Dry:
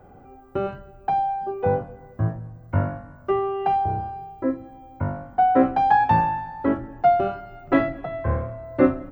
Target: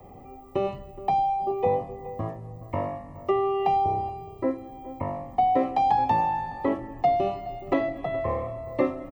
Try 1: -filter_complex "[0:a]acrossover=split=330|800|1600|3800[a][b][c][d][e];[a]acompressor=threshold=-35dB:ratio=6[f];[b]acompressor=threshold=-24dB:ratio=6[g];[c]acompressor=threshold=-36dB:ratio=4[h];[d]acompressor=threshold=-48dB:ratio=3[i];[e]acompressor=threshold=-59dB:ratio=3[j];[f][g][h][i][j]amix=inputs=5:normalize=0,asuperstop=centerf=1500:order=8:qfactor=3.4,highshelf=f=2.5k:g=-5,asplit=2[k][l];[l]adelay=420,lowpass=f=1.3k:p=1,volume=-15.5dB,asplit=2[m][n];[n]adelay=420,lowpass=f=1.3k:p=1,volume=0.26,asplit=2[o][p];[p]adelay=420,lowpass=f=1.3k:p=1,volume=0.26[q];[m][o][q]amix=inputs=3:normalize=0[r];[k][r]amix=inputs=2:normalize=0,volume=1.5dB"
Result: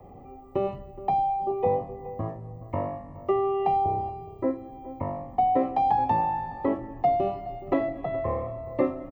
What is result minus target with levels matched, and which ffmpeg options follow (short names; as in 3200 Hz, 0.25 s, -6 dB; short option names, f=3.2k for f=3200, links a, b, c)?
4000 Hz band -6.5 dB
-filter_complex "[0:a]acrossover=split=330|800|1600|3800[a][b][c][d][e];[a]acompressor=threshold=-35dB:ratio=6[f];[b]acompressor=threshold=-24dB:ratio=6[g];[c]acompressor=threshold=-36dB:ratio=4[h];[d]acompressor=threshold=-48dB:ratio=3[i];[e]acompressor=threshold=-59dB:ratio=3[j];[f][g][h][i][j]amix=inputs=5:normalize=0,asuperstop=centerf=1500:order=8:qfactor=3.4,highshelf=f=2.5k:g=6.5,asplit=2[k][l];[l]adelay=420,lowpass=f=1.3k:p=1,volume=-15.5dB,asplit=2[m][n];[n]adelay=420,lowpass=f=1.3k:p=1,volume=0.26,asplit=2[o][p];[p]adelay=420,lowpass=f=1.3k:p=1,volume=0.26[q];[m][o][q]amix=inputs=3:normalize=0[r];[k][r]amix=inputs=2:normalize=0,volume=1.5dB"